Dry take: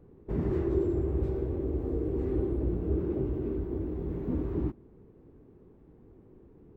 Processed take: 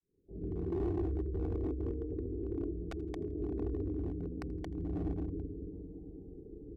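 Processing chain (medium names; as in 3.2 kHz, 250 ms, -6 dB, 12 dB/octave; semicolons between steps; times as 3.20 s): fade-in on the opening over 2.07 s; dynamic bell 2 kHz, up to -4 dB, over -55 dBFS, Q 1.1; spectral gate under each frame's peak -20 dB strong; reverberation RT60 2.8 s, pre-delay 3 ms, DRR -6 dB; integer overflow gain 12 dB; 2.56–3.47 s: de-hum 65.22 Hz, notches 2; compressor with a negative ratio -30 dBFS, ratio -1; distance through air 59 m; feedback delay 82 ms, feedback 41%, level -23 dB; overload inside the chain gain 24 dB; comb 2.7 ms, depth 46%; trim -7 dB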